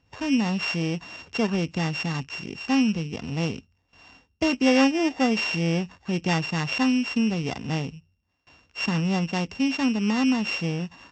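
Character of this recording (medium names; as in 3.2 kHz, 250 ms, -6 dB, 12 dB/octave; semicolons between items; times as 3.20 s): a buzz of ramps at a fixed pitch in blocks of 16 samples; AAC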